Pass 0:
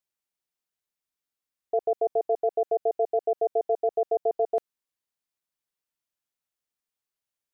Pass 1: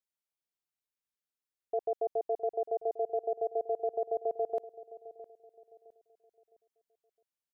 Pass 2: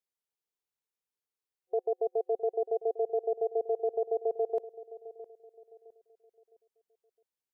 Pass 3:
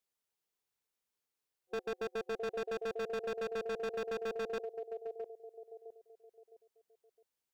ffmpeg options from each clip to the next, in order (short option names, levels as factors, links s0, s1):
-filter_complex "[0:a]asplit=2[s0][s1];[s1]adelay=661,lowpass=f=870:p=1,volume=0.188,asplit=2[s2][s3];[s3]adelay=661,lowpass=f=870:p=1,volume=0.4,asplit=2[s4][s5];[s5]adelay=661,lowpass=f=870:p=1,volume=0.4,asplit=2[s6][s7];[s7]adelay=661,lowpass=f=870:p=1,volume=0.4[s8];[s0][s2][s4][s6][s8]amix=inputs=5:normalize=0,volume=0.447"
-af "superequalizer=7b=2.24:9b=1.41,volume=0.75"
-af "asoftclip=type=hard:threshold=0.0119,volume=1.5"